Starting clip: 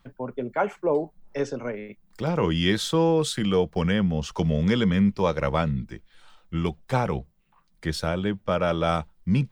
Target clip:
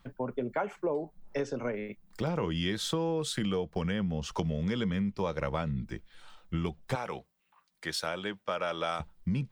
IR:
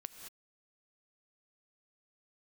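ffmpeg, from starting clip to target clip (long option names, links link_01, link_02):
-filter_complex "[0:a]asettb=1/sr,asplit=3[link_01][link_02][link_03];[link_01]atrim=end=6.954[link_04];[link_02]atrim=start=6.95:end=9,asetpts=PTS-STARTPTS,afade=type=in:duration=0.004:curve=qsin,afade=type=out:start_time=2.046:duration=0.004:curve=qsin,highpass=frequency=930:poles=1[link_05];[link_03]atrim=start=8.996[link_06];[link_04][link_05]acrossfade=duration=0.004:curve1=hsin:curve2=qsin[link_07];[link_07][link_06]acrossfade=duration=0.004:curve1=qsin:curve2=hsin,acompressor=threshold=-28dB:ratio=6"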